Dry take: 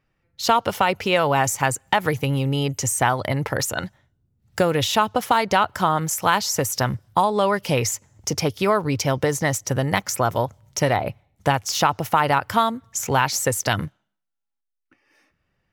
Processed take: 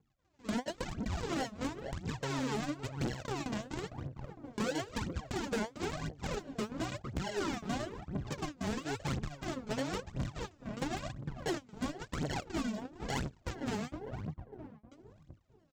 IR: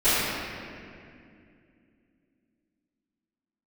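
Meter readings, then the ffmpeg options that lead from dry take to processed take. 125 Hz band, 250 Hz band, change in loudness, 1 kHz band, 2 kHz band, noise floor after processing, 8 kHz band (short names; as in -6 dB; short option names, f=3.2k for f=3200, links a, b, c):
-14.5 dB, -10.0 dB, -17.0 dB, -21.5 dB, -17.5 dB, -65 dBFS, -22.0 dB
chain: -filter_complex "[0:a]lowpass=f=2k:w=0.5412,lowpass=f=2k:w=1.3066,aresample=16000,acrusher=samples=25:mix=1:aa=0.000001:lfo=1:lforange=25:lforate=1.2,aresample=44100,asplit=2[a][b];[b]adelay=456,lowpass=f=1.1k:p=1,volume=-13dB,asplit=2[c][d];[d]adelay=456,lowpass=f=1.1k:p=1,volume=0.41,asplit=2[e][f];[f]adelay=456,lowpass=f=1.1k:p=1,volume=0.41,asplit=2[g][h];[h]adelay=456,lowpass=f=1.1k:p=1,volume=0.41[i];[a][c][e][g][i]amix=inputs=5:normalize=0,aphaser=in_gain=1:out_gain=1:delay=4.9:decay=0.77:speed=0.98:type=triangular,acompressor=threshold=-30dB:ratio=3,highpass=f=100:p=1,asoftclip=type=hard:threshold=-25dB,dynaudnorm=f=180:g=3:m=3.5dB,volume=-7.5dB"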